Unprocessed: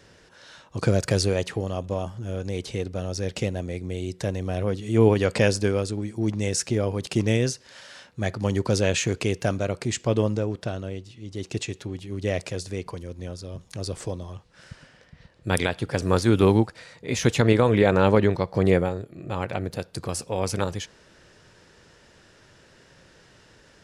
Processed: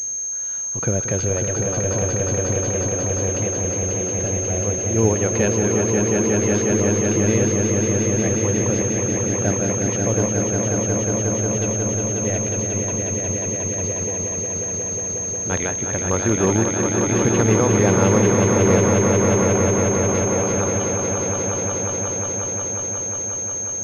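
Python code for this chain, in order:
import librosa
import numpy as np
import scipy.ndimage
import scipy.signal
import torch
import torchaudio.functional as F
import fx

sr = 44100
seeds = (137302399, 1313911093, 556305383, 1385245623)

y = fx.vowel_filter(x, sr, vowel='u', at=(8.82, 9.35))
y = fx.echo_swell(y, sr, ms=180, loudest=5, wet_db=-5)
y = fx.pwm(y, sr, carrier_hz=6400.0)
y = F.gain(torch.from_numpy(y), -1.0).numpy()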